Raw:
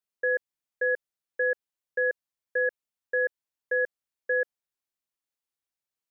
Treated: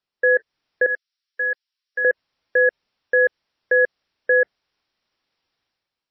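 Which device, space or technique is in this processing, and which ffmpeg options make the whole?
low-bitrate web radio: -filter_complex "[0:a]asettb=1/sr,asplit=3[a][b][c];[a]atrim=end=0.864[d];[b]atrim=start=0.86:end=2.05,asetpts=PTS-STARTPTS,afade=t=in:d=0.004:c=qsin,afade=t=out:st=1.186:d=0.004:c=qsin,aderivative[e];[c]atrim=start=2.046[f];[d][e]acrossfade=d=0.004:c1=hsin:c2=qsin[g];[g][f]acrossfade=d=0.004:c1=qsin:c2=hsin,dynaudnorm=f=130:g=7:m=10dB,alimiter=limit=-17dB:level=0:latency=1:release=53,volume=8.5dB" -ar 16000 -c:a libmp3lame -b:a 24k

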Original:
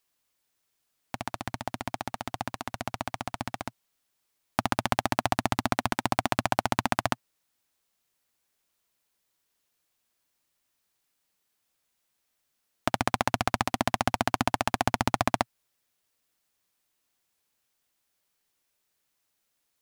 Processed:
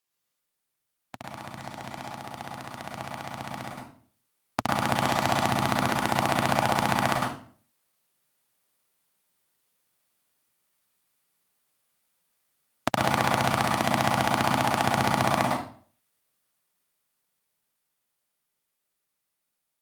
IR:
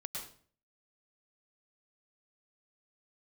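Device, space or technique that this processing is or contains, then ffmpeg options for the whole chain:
far-field microphone of a smart speaker: -filter_complex "[1:a]atrim=start_sample=2205[a];[0:a][a]afir=irnorm=-1:irlink=0,highpass=83,dynaudnorm=f=870:g=9:m=13.5dB,volume=-2dB" -ar 48000 -c:a libopus -b:a 48k

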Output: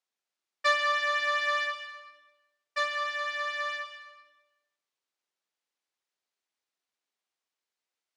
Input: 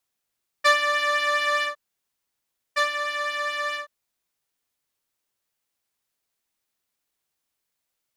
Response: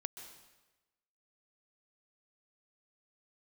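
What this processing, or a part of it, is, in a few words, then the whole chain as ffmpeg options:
supermarket ceiling speaker: -filter_complex "[0:a]highpass=300,lowpass=6.4k[a];[1:a]atrim=start_sample=2205[b];[a][b]afir=irnorm=-1:irlink=0,volume=-3dB"

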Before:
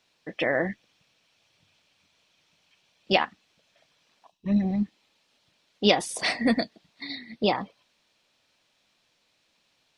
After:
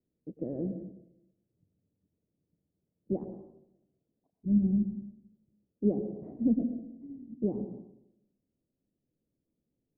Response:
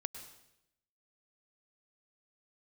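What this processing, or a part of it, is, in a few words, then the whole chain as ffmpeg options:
next room: -filter_complex "[0:a]lowpass=f=380:w=0.5412,lowpass=f=380:w=1.3066[a];[1:a]atrim=start_sample=2205[b];[a][b]afir=irnorm=-1:irlink=0"

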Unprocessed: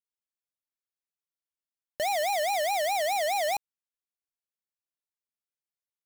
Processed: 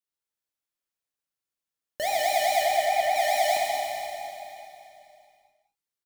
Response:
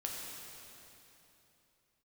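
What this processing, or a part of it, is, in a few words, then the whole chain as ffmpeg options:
cave: -filter_complex "[0:a]asettb=1/sr,asplit=3[a][b][c];[a]atrim=end=2.634[d];[b]atrim=start=2.63:end=3.16,asetpts=PTS-STARTPTS,afade=t=in:d=0.004:c=qsin,afade=t=out:st=0.526:d=0.004:c=qsin,acrossover=split=2500[e][f];[f]acompressor=threshold=-40dB:ratio=4:attack=1:release=60[g];[e][g]amix=inputs=2:normalize=0[h];[c]atrim=start=3.156[i];[d][h]acrossfade=d=0.004:c1=hsin:c2=qsin[j];[j][i]acrossfade=d=0.004:c1=qsin:c2=hsin,aecho=1:1:204:0.335[k];[1:a]atrim=start_sample=2205[l];[k][l]afir=irnorm=-1:irlink=0,volume=2.5dB"

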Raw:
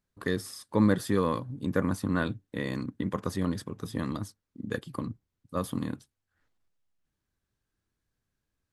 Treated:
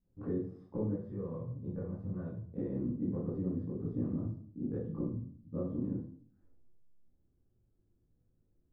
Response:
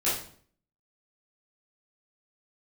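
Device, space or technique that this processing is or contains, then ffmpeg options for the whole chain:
television next door: -filter_complex "[0:a]acompressor=threshold=-42dB:ratio=4,lowpass=400[a];[1:a]atrim=start_sample=2205[b];[a][b]afir=irnorm=-1:irlink=0,asettb=1/sr,asplit=3[c][d][e];[c]atrim=end=0.964[f];[d]atrim=start=0.96:end=2.58,asetpts=PTS-STARTPTS,afade=t=in:d=0.004:c=qsin,afade=t=out:st=1.616:d=0.004:c=qsin,equalizer=f=280:t=o:w=0.79:g=-14[g];[e]atrim=start=2.576[h];[f][g]acrossfade=d=0.004:c1=hsin:c2=qsin[i];[i][h]acrossfade=d=0.004:c1=qsin:c2=hsin"

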